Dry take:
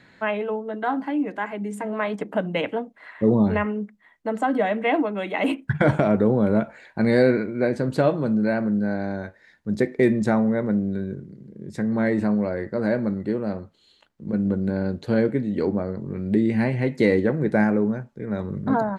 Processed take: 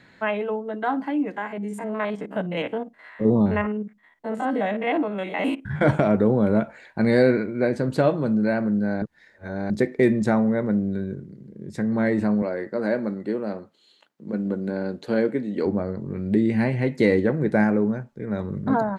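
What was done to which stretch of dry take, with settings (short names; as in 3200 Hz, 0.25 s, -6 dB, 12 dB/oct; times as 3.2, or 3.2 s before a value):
1.32–5.83 stepped spectrum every 50 ms
9.02–9.7 reverse
12.42–15.66 HPF 220 Hz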